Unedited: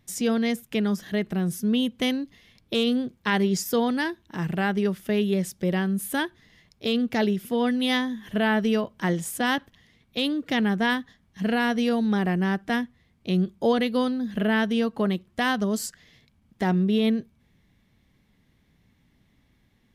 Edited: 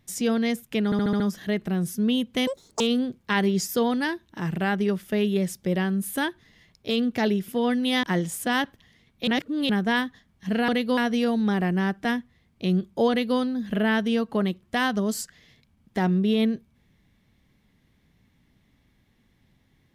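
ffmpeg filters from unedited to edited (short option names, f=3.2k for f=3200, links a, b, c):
-filter_complex "[0:a]asplit=13[a][b][c][d][e][f][g][h][i][j][k][l][m];[a]atrim=end=0.922[n];[b]atrim=start=0.848:end=0.922[o];[c]atrim=start=0.848:end=0.922[p];[d]atrim=start=0.848:end=0.922[q];[e]atrim=start=0.848:end=0.922[r];[f]atrim=start=0.848:end=2.124[s];[g]atrim=start=2.12:end=2.77,asetpts=PTS-STARTPTS,asetrate=85995,aresample=44100[t];[h]atrim=start=2.766:end=8.002[u];[i]atrim=start=8.968:end=10.212[v];[j]atrim=start=10.208:end=10.632,asetpts=PTS-STARTPTS,areverse[w];[k]atrim=start=10.628:end=11.622[x];[l]atrim=start=13.738:end=14.032[y];[m]atrim=start=11.618[z];[n][o]acrossfade=d=0.004:c1=hsin:c2=hsin[aa];[aa][p]acrossfade=d=0.004:c1=hsin:c2=hsin[ab];[ab][q]acrossfade=d=0.004:c1=hsin:c2=hsin[ac];[ac][r]acrossfade=d=0.004:c1=hsin:c2=hsin[ad];[ad][s]acrossfade=d=0.004:c1=hsin:c2=hsin[ae];[ae][t]acrossfade=d=0.004:c1=hsin:c2=hsin[af];[af][u]acrossfade=d=0.004:c1=hsin:c2=hsin[ag];[ag][v]acrossfade=d=0.004:c1=hsin:c2=hsin[ah];[ah][w]acrossfade=d=0.004:c1=hsin:c2=hsin[ai];[ai][x]acrossfade=d=0.004:c1=hsin:c2=hsin[aj];[aj][y]acrossfade=d=0.004:c1=hsin:c2=hsin[ak];[ak][z]acrossfade=d=0.004:c1=hsin:c2=hsin"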